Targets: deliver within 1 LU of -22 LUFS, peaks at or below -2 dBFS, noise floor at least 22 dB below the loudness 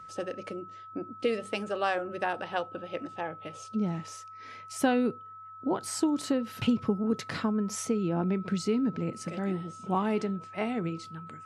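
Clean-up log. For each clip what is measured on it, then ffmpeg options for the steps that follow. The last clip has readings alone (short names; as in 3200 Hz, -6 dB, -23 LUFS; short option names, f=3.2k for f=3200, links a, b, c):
steady tone 1300 Hz; tone level -44 dBFS; loudness -31.5 LUFS; peak -12.0 dBFS; loudness target -22.0 LUFS
-> -af "bandreject=f=1.3k:w=30"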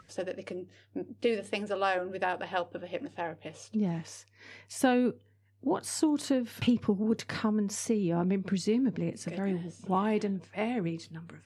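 steady tone none; loudness -31.5 LUFS; peak -12.5 dBFS; loudness target -22.0 LUFS
-> -af "volume=9.5dB"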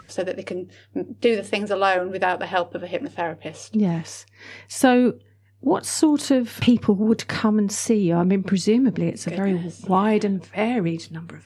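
loudness -22.0 LUFS; peak -3.0 dBFS; noise floor -54 dBFS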